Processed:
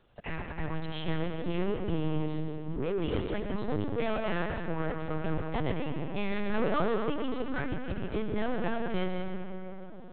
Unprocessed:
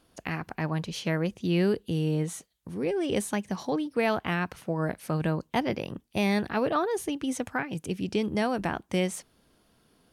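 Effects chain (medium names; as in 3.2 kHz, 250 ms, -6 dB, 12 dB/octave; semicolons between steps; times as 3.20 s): saturation -27.5 dBFS, distortion -10 dB; algorithmic reverb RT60 4.1 s, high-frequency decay 0.35×, pre-delay 50 ms, DRR 2.5 dB; LPC vocoder at 8 kHz pitch kept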